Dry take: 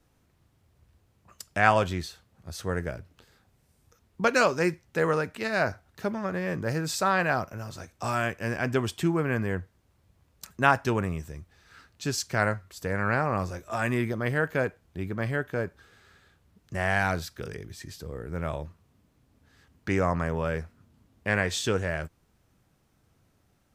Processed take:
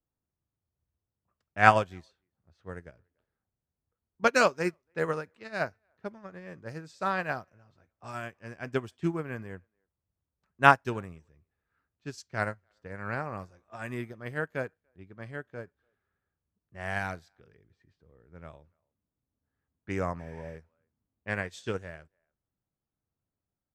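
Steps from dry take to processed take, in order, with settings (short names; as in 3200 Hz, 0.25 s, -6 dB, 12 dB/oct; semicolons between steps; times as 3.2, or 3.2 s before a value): speakerphone echo 0.29 s, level -25 dB; low-pass opened by the level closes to 1500 Hz, open at -23.5 dBFS; spectral repair 20.22–20.53, 1000–11000 Hz after; upward expander 2.5:1, over -35 dBFS; gain +4.5 dB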